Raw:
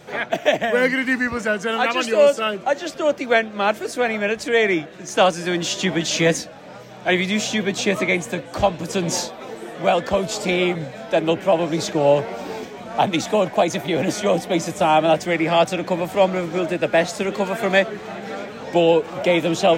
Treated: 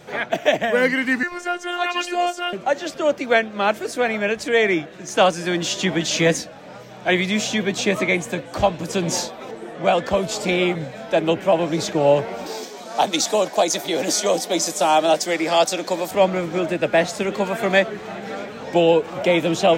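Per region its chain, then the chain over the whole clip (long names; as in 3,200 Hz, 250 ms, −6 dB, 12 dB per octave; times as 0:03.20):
0:01.23–0:02.53: low-shelf EQ 220 Hz −10.5 dB + phases set to zero 352 Hz
0:09.51–0:10.07: low-pass filter 11,000 Hz + one half of a high-frequency compander decoder only
0:12.46–0:16.11: high-pass filter 290 Hz + high shelf with overshoot 3,500 Hz +8 dB, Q 1.5
whole clip: no processing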